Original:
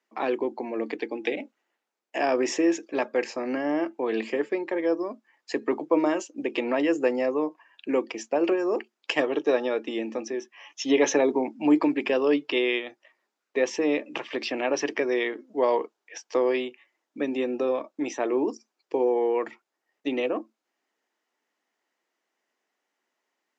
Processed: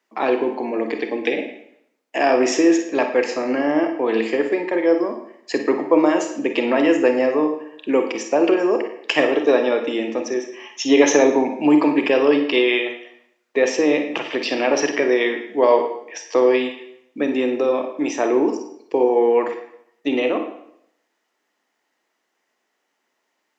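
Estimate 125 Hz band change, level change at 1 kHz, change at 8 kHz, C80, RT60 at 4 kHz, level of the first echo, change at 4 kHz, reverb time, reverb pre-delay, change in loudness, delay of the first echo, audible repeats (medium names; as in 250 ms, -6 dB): +8.0 dB, +8.0 dB, no reading, 10.0 dB, 0.65 s, no echo, +7.5 dB, 0.70 s, 31 ms, +7.5 dB, no echo, no echo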